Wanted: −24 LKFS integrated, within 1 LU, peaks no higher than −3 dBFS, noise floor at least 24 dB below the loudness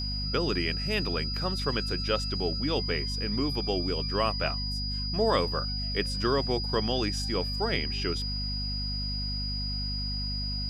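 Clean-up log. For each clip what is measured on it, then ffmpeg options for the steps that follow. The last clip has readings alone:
mains hum 50 Hz; hum harmonics up to 250 Hz; level of the hum −31 dBFS; interfering tone 4,900 Hz; level of the tone −33 dBFS; integrated loudness −29.0 LKFS; sample peak −12.0 dBFS; target loudness −24.0 LKFS
→ -af "bandreject=frequency=50:width_type=h:width=6,bandreject=frequency=100:width_type=h:width=6,bandreject=frequency=150:width_type=h:width=6,bandreject=frequency=200:width_type=h:width=6,bandreject=frequency=250:width_type=h:width=6"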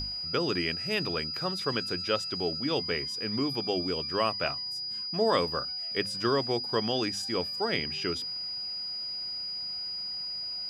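mains hum none found; interfering tone 4,900 Hz; level of the tone −33 dBFS
→ -af "bandreject=frequency=4900:width=30"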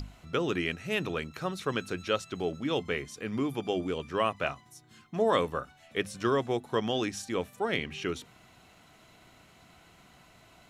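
interfering tone none found; integrated loudness −32.0 LKFS; sample peak −12.5 dBFS; target loudness −24.0 LKFS
→ -af "volume=8dB"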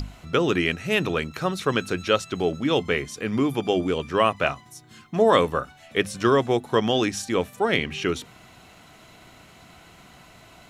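integrated loudness −24.0 LKFS; sample peak −4.5 dBFS; background noise floor −51 dBFS

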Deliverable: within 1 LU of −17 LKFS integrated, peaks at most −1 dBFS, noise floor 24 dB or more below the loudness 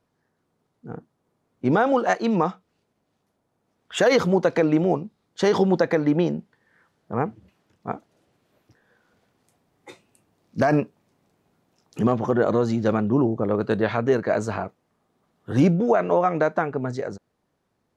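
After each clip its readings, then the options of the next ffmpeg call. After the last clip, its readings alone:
integrated loudness −22.5 LKFS; sample peak −8.5 dBFS; target loudness −17.0 LKFS
→ -af "volume=5.5dB"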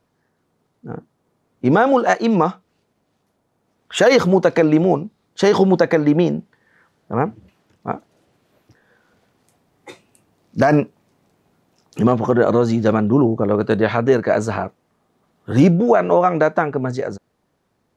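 integrated loudness −17.0 LKFS; sample peak −3.0 dBFS; background noise floor −68 dBFS

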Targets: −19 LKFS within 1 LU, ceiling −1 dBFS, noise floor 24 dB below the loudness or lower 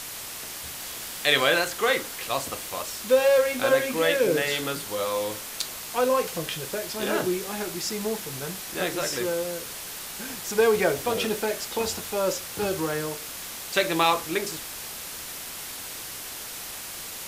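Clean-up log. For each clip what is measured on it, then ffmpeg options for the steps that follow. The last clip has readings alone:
background noise floor −37 dBFS; target noise floor −51 dBFS; integrated loudness −26.5 LKFS; sample peak −5.0 dBFS; target loudness −19.0 LKFS
→ -af "afftdn=noise_reduction=14:noise_floor=-37"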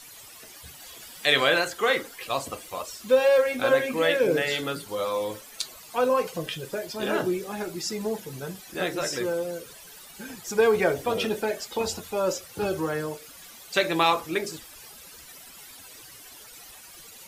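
background noise floor −47 dBFS; target noise floor −50 dBFS
→ -af "afftdn=noise_reduction=6:noise_floor=-47"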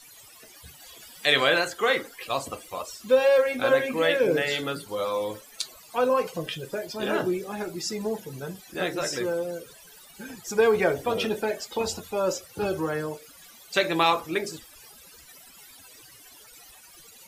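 background noise floor −51 dBFS; integrated loudness −26.0 LKFS; sample peak −6.5 dBFS; target loudness −19.0 LKFS
→ -af "volume=7dB,alimiter=limit=-1dB:level=0:latency=1"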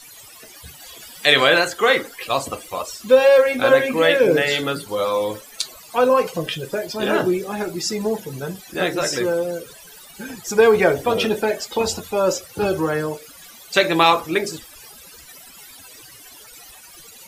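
integrated loudness −19.0 LKFS; sample peak −1.0 dBFS; background noise floor −44 dBFS

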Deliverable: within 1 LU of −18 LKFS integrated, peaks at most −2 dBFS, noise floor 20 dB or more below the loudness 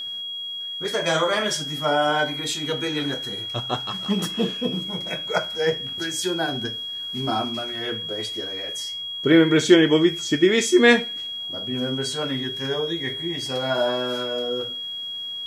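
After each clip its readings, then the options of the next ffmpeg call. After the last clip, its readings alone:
interfering tone 3,300 Hz; level of the tone −29 dBFS; integrated loudness −23.0 LKFS; sample peak −1.5 dBFS; target loudness −18.0 LKFS
→ -af "bandreject=frequency=3300:width=30"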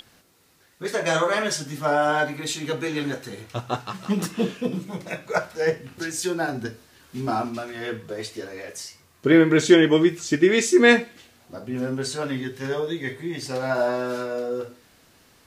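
interfering tone none found; integrated loudness −23.5 LKFS; sample peak −2.5 dBFS; target loudness −18.0 LKFS
→ -af "volume=5.5dB,alimiter=limit=-2dB:level=0:latency=1"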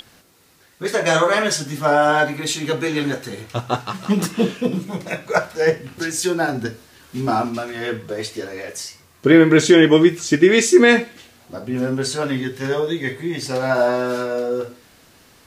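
integrated loudness −18.5 LKFS; sample peak −2.0 dBFS; background noise floor −52 dBFS

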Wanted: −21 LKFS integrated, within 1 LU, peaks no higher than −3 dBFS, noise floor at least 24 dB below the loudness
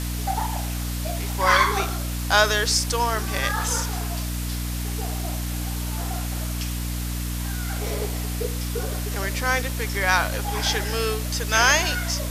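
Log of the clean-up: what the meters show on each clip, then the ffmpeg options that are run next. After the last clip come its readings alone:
mains hum 60 Hz; hum harmonics up to 300 Hz; level of the hum −26 dBFS; background noise floor −28 dBFS; target noise floor −48 dBFS; integrated loudness −24.0 LKFS; sample peak −2.0 dBFS; target loudness −21.0 LKFS
→ -af "bandreject=frequency=60:width_type=h:width=4,bandreject=frequency=120:width_type=h:width=4,bandreject=frequency=180:width_type=h:width=4,bandreject=frequency=240:width_type=h:width=4,bandreject=frequency=300:width_type=h:width=4"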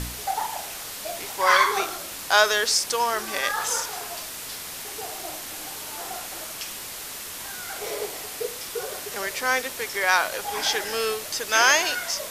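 mains hum none found; background noise floor −36 dBFS; target noise floor −49 dBFS
→ -af "afftdn=noise_reduction=13:noise_floor=-36"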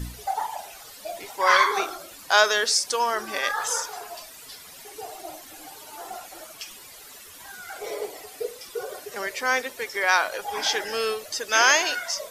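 background noise floor −45 dBFS; target noise floor −48 dBFS
→ -af "afftdn=noise_reduction=6:noise_floor=-45"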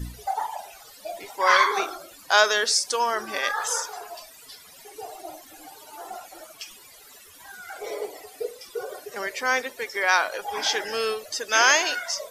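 background noise floor −49 dBFS; integrated loudness −23.5 LKFS; sample peak −2.5 dBFS; target loudness −21.0 LKFS
→ -af "volume=2.5dB,alimiter=limit=-3dB:level=0:latency=1"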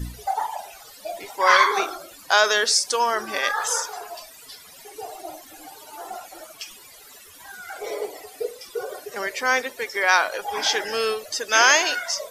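integrated loudness −21.5 LKFS; sample peak −3.0 dBFS; background noise floor −47 dBFS

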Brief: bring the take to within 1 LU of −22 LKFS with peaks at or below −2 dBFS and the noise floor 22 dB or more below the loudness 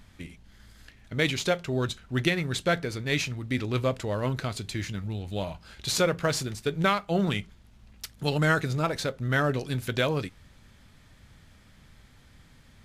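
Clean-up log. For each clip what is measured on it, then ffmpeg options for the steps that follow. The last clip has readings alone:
integrated loudness −28.5 LKFS; sample peak −9.5 dBFS; target loudness −22.0 LKFS
→ -af "volume=6.5dB"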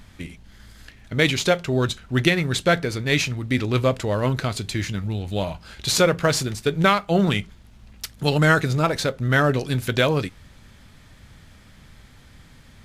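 integrated loudness −22.0 LKFS; sample peak −3.0 dBFS; background noise floor −50 dBFS

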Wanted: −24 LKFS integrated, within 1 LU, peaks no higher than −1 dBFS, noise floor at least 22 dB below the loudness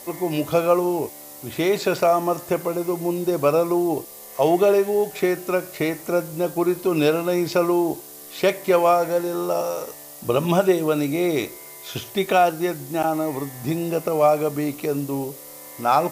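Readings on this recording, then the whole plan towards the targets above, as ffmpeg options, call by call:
background noise floor −41 dBFS; target noise floor −44 dBFS; integrated loudness −22.0 LKFS; sample peak −6.0 dBFS; target loudness −24.0 LKFS
→ -af "afftdn=noise_reduction=6:noise_floor=-41"
-af "volume=-2dB"

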